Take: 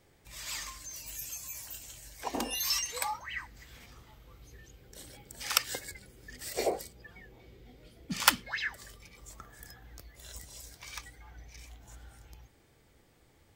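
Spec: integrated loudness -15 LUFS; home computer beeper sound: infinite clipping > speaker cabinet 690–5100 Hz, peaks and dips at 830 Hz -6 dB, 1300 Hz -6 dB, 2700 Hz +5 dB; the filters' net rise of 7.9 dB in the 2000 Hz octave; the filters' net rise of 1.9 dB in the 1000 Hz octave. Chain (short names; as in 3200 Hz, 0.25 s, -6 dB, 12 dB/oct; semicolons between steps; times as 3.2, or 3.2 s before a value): bell 1000 Hz +7 dB; bell 2000 Hz +7.5 dB; infinite clipping; speaker cabinet 690–5100 Hz, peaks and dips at 830 Hz -6 dB, 1300 Hz -6 dB, 2700 Hz +5 dB; gain +21 dB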